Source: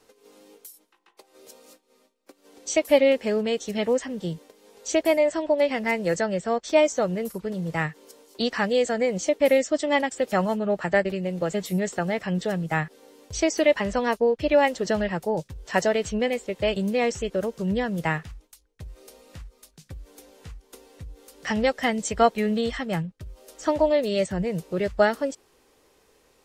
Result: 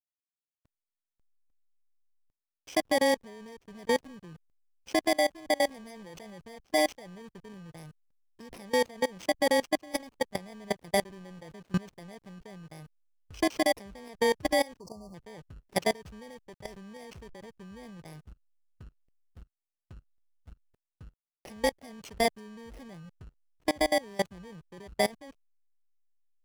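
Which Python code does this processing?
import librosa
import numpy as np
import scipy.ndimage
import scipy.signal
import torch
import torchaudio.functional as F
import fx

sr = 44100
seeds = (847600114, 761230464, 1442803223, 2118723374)

y = fx.bit_reversed(x, sr, seeds[0], block=32)
y = fx.air_absorb(y, sr, metres=50.0)
y = fx.backlash(y, sr, play_db=-32.0)
y = fx.level_steps(y, sr, step_db=23)
y = fx.spec_erase(y, sr, start_s=14.8, length_s=0.34, low_hz=1200.0, high_hz=4300.0)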